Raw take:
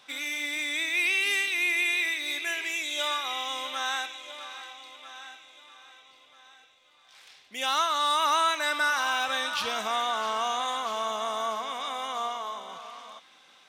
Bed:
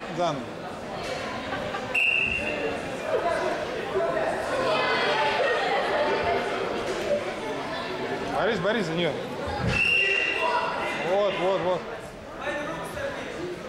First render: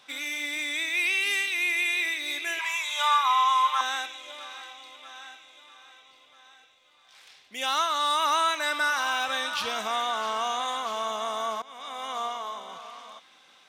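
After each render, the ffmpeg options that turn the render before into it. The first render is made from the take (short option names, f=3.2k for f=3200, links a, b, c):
-filter_complex "[0:a]asplit=3[a][b][c];[a]afade=t=out:st=0.71:d=0.02[d];[b]asubboost=boost=7:cutoff=150,afade=t=in:st=0.71:d=0.02,afade=t=out:st=1.95:d=0.02[e];[c]afade=t=in:st=1.95:d=0.02[f];[d][e][f]amix=inputs=3:normalize=0,asettb=1/sr,asplit=3[g][h][i];[g]atrim=end=2.594[j];[h]atrim=start=2.59:end=3.81,asetpts=PTS-STARTPTS,afade=t=in:d=0.004:c=qsin,afade=t=out:st=1.216:d=0.004:c=qsin,highpass=f=1k:t=q:w=9.1[k];[i]atrim=start=3.806[l];[j][k]acrossfade=d=0.004:c1=hsin:c2=qsin[m];[m][l]acrossfade=d=0.004:c1=qsin:c2=hsin,asplit=2[n][o];[n]atrim=end=11.62,asetpts=PTS-STARTPTS,afade=t=out:st=11.616:d=0.004:c=hsin:silence=0.11885[p];[o]atrim=start=11.62,asetpts=PTS-STARTPTS,afade=t=in:d=0.51:silence=0.11885[q];[p][q]concat=n=2:v=0:a=1"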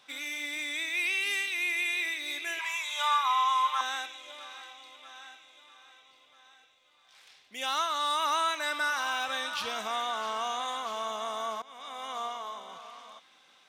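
-af "volume=-4dB"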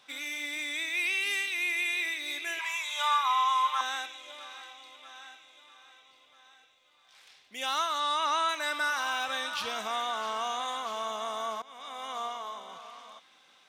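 -filter_complex "[0:a]asettb=1/sr,asplit=3[a][b][c];[a]atrim=end=8.004[d];[b]atrim=start=8:end=8.49,asetpts=PTS-STARTPTS,afade=t=in:d=0.004:c=qsin,afade=t=out:st=0.486:d=0.004:c=qsin,lowpass=7.1k[e];[c]atrim=start=8.486[f];[d][e]acrossfade=d=0.004:c1=hsin:c2=qsin[g];[g][f]acrossfade=d=0.004:c1=qsin:c2=hsin"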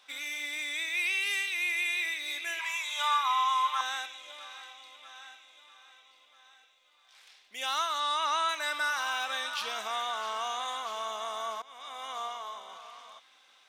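-af "equalizer=f=130:t=o:w=2.6:g=-13.5,bandreject=f=50:t=h:w=6,bandreject=f=100:t=h:w=6,bandreject=f=150:t=h:w=6"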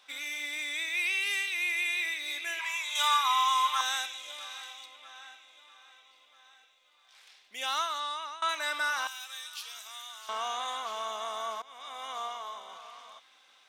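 -filter_complex "[0:a]asettb=1/sr,asplit=3[a][b][c];[a]atrim=end=2.954[d];[b]atrim=start=2.95:end=4.86,asetpts=PTS-STARTPTS,afade=t=in:d=0.004:c=qsin,afade=t=out:st=1.906:d=0.004:c=qsin,highshelf=f=3.8k:g=10.5[e];[c]atrim=start=4.856[f];[d][e]acrossfade=d=0.004:c1=hsin:c2=qsin[g];[g][f]acrossfade=d=0.004:c1=qsin:c2=hsin,asettb=1/sr,asplit=3[h][i][j];[h]atrim=end=9.074[k];[i]atrim=start=9.07:end=10.29,asetpts=PTS-STARTPTS,afade=t=in:d=0.004:c=qsin,afade=t=out:st=1.216:d=0.004:c=qsin,aderivative[l];[j]atrim=start=10.286[m];[k][l]acrossfade=d=0.004:c1=hsin:c2=qsin[n];[n][m]acrossfade=d=0.004:c1=qsin:c2=hsin,asplit=2[o][p];[o]atrim=end=8.42,asetpts=PTS-STARTPTS,afade=t=out:st=7.77:d=0.65:silence=0.1[q];[p]atrim=start=8.42,asetpts=PTS-STARTPTS,afade=t=in:d=0.004:c=hsin:silence=0.1[r];[q][r]concat=n=2:v=0:a=1"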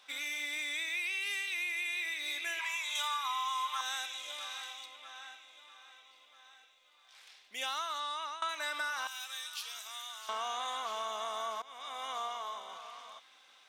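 -af "acompressor=threshold=-33dB:ratio=5"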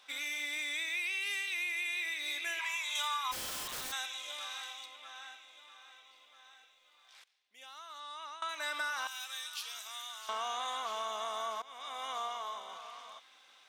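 -filter_complex "[0:a]asplit=3[a][b][c];[a]afade=t=out:st=3.31:d=0.02[d];[b]aeval=exprs='(mod(59.6*val(0)+1,2)-1)/59.6':c=same,afade=t=in:st=3.31:d=0.02,afade=t=out:st=3.91:d=0.02[e];[c]afade=t=in:st=3.91:d=0.02[f];[d][e][f]amix=inputs=3:normalize=0,asplit=2[g][h];[g]atrim=end=7.24,asetpts=PTS-STARTPTS,afade=t=out:st=7.236:d=0.004:c=hsin:silence=0.0944061[i];[h]atrim=start=7.24,asetpts=PTS-STARTPTS,afade=t=in:d=1.46:c=qua:silence=0.0944061[j];[i][j]concat=n=2:v=0:a=1"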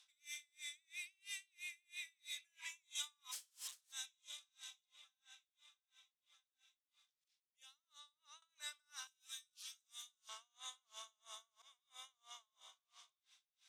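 -af "bandpass=f=7.5k:t=q:w=1:csg=0,aeval=exprs='val(0)*pow(10,-38*(0.5-0.5*cos(2*PI*3*n/s))/20)':c=same"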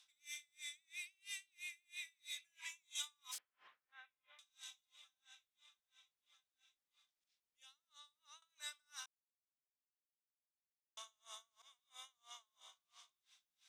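-filter_complex "[0:a]asettb=1/sr,asplit=3[a][b][c];[a]atrim=end=3.384[d];[b]atrim=start=3.38:end=4.39,asetpts=PTS-STARTPTS,afade=t=in:d=0.004:c=qsin,afade=t=out:st=1.006:d=0.004:c=qsin,lowpass=f=2k:w=0.5412,lowpass=f=2k:w=1.3066[e];[c]atrim=start=4.386[f];[d][e]acrossfade=d=0.004:c1=hsin:c2=qsin[g];[g][f]acrossfade=d=0.004:c1=qsin:c2=hsin,asettb=1/sr,asplit=3[h][i][j];[h]atrim=end=5.144[k];[i]atrim=start=5.14:end=8.04,asetpts=PTS-STARTPTS,afade=t=in:d=0.004:c=qsin,afade=t=out:st=2.896:d=0.004:c=qsin,highshelf=f=7.8k:g=-5.5[l];[j]atrim=start=8.036[m];[k][l]acrossfade=d=0.004:c1=hsin:c2=qsin[n];[n][m]acrossfade=d=0.004:c1=qsin:c2=hsin,asplit=3[o][p][q];[o]atrim=end=9.06,asetpts=PTS-STARTPTS,afade=t=out:st=9.056:d=0.004:c=hsin[r];[p]atrim=start=9.06:end=10.97,asetpts=PTS-STARTPTS,volume=0[s];[q]atrim=start=10.97,asetpts=PTS-STARTPTS,afade=t=in:d=0.004:c=hsin[t];[r][s][t]concat=n=3:v=0:a=1"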